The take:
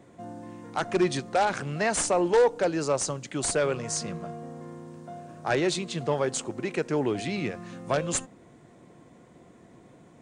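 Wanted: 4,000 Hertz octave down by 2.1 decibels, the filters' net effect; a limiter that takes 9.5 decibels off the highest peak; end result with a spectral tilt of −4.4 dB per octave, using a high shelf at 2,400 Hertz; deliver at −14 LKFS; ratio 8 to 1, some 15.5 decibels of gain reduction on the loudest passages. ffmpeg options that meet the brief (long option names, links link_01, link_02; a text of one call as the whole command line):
ffmpeg -i in.wav -af "highshelf=frequency=2400:gain=5,equalizer=frequency=4000:width_type=o:gain=-7.5,acompressor=threshold=-33dB:ratio=8,volume=25dB,alimiter=limit=-4dB:level=0:latency=1" out.wav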